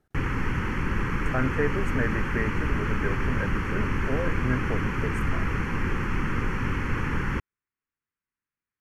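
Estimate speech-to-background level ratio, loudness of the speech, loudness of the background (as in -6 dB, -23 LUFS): -3.5 dB, -32.5 LUFS, -29.0 LUFS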